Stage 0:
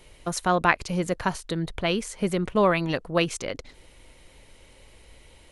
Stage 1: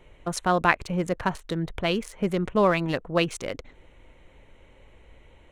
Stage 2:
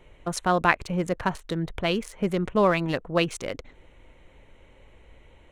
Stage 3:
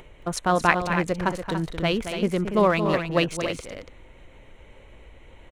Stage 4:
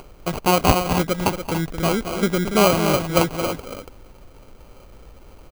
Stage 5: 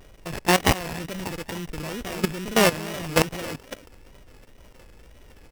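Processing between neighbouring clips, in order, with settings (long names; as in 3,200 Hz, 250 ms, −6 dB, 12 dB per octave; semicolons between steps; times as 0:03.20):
adaptive Wiener filter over 9 samples
no processing that can be heard
upward compression, threshold −43 dBFS; on a send: loudspeakers that aren't time-aligned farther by 77 metres −9 dB, 98 metres −9 dB; on the sum: level +1 dB
sample-rate reduction 1,800 Hz, jitter 0%; level +3.5 dB
samples sorted by size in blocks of 16 samples; tape wow and flutter 120 cents; output level in coarse steps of 16 dB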